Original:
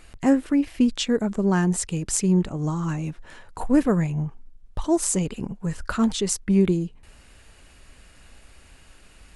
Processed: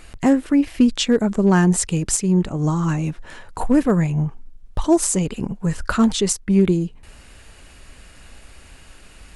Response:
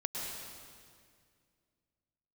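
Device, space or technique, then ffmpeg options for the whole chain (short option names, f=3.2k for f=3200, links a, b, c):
limiter into clipper: -af "alimiter=limit=-12dB:level=0:latency=1:release=494,asoftclip=type=hard:threshold=-13dB,volume=6dB"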